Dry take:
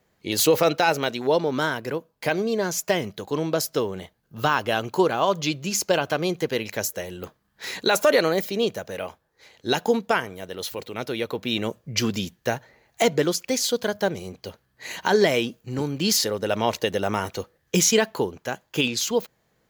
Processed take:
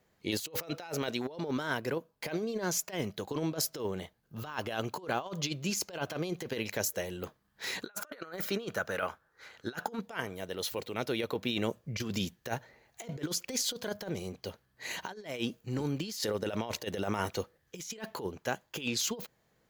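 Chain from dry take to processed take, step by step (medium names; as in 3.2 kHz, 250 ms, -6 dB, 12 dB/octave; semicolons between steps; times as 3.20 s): 7.82–10.01 s: peaking EQ 1.4 kHz +14.5 dB 0.61 oct; compressor with a negative ratio -26 dBFS, ratio -0.5; trim -8 dB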